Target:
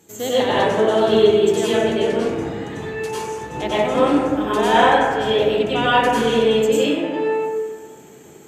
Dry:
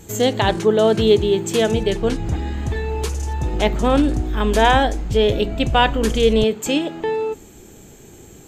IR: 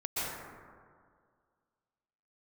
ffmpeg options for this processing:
-filter_complex "[0:a]highpass=190[s0];[1:a]atrim=start_sample=2205,asetrate=57330,aresample=44100[s1];[s0][s1]afir=irnorm=-1:irlink=0,volume=0.708"

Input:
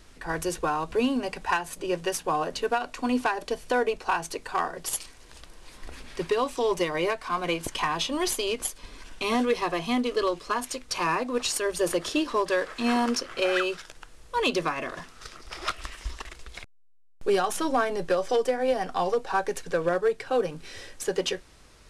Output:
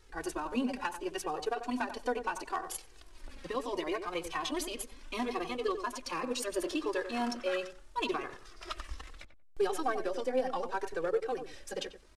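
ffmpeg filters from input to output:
-filter_complex "[0:a]flanger=delay=2.2:depth=1.7:regen=7:speed=0.4:shape=triangular,atempo=1.8,asplit=2[s0][s1];[s1]adelay=92,lowpass=f=1200:p=1,volume=0.398,asplit=2[s2][s3];[s3]adelay=92,lowpass=f=1200:p=1,volume=0.21,asplit=2[s4][s5];[s5]adelay=92,lowpass=f=1200:p=1,volume=0.21[s6];[s0][s2][s4][s6]amix=inputs=4:normalize=0,volume=0.562"

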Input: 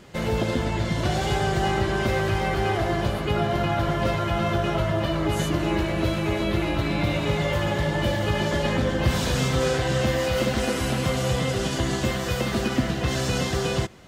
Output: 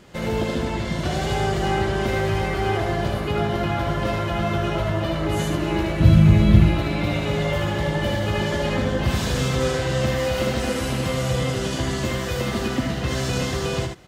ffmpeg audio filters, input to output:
-filter_complex "[0:a]asettb=1/sr,asplit=3[s0][s1][s2];[s0]atrim=end=6.004[s3];[s1]atrim=start=6:end=6.7,asetpts=PTS-STARTPTS,afade=t=in:d=0.004:c=qsin,afade=t=out:st=0.696:d=0.004:c=qsin,lowshelf=f=250:t=q:w=1.5:g=12.5[s4];[s2]atrim=start=6.696[s5];[s3][s4]acrossfade=d=0.004:c1=hsin:c2=qsin[s6];[s6][s5]acrossfade=d=0.004:c1=qsin:c2=hsin,asplit=2[s7][s8];[s8]aecho=0:1:77:0.562[s9];[s7][s9]amix=inputs=2:normalize=0,volume=0.891"

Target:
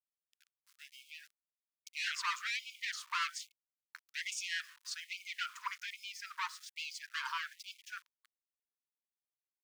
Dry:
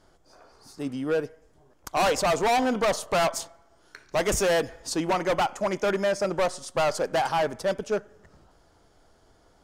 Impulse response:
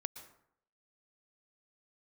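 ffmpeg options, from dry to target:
-af "highpass=610,lowpass=5200,aeval=exprs='val(0)*gte(abs(val(0)),0.00473)':c=same,afftfilt=real='re*gte(b*sr/1024,900*pow(2200/900,0.5+0.5*sin(2*PI*1.2*pts/sr)))':imag='im*gte(b*sr/1024,900*pow(2200/900,0.5+0.5*sin(2*PI*1.2*pts/sr)))':win_size=1024:overlap=0.75,volume=0.531"

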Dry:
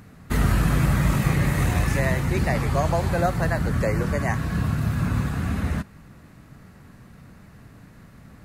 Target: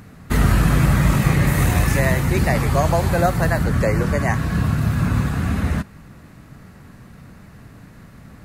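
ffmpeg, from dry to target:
-filter_complex "[0:a]asettb=1/sr,asplit=3[s0][s1][s2];[s0]atrim=end=1.474[s3];[s1]atrim=start=1.47:end=3.64,asetpts=PTS-STARTPTS,afade=t=in:d=0.004:c=qsin,afade=t=out:st=2.166:d=0.004:c=qsin,highshelf=f=11000:g=8[s4];[s2]atrim=start=3.636[s5];[s3][s4]acrossfade=d=0.004:c1=hsin:c2=qsin[s6];[s6][s5]acrossfade=d=0.004:c1=qsin:c2=hsin,volume=1.68"

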